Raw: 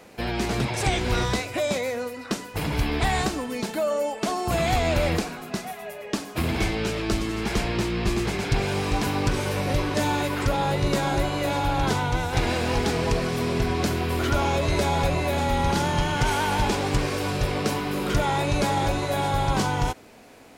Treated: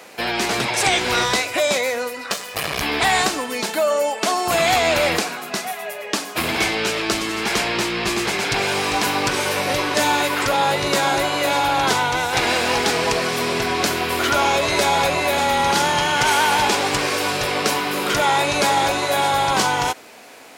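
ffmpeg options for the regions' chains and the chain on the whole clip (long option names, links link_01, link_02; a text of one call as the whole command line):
ffmpeg -i in.wav -filter_complex "[0:a]asettb=1/sr,asplit=3[link_01][link_02][link_03];[link_01]atrim=end=2.304[link_04];[link_02]atrim=start=2.3:end=2.82,asetpts=PTS-STARTPTS,afade=type=in:duration=0.004:curve=qsin,afade=type=out:start_time=0.516:duration=0.004:curve=qsin,aecho=1:1:1.7:0.9,atrim=end_sample=22932,acompressor=mode=upward:threshold=-30dB:ratio=2.5:attack=3.2:release=140:knee=2.83:detection=peak,aeval=exprs='max(val(0),0)':channel_layout=same[link_05];[link_03]atrim=start=2.816[link_06];[link_04][link_05]acrossfade=duration=0.004:curve1=hsin:curve2=qsin[link_07];[link_07][link_06]acrossfade=duration=0.004:curve1=qsin:curve2=hsin,highpass=frequency=810:poles=1,acontrast=76,volume=3.5dB" out.wav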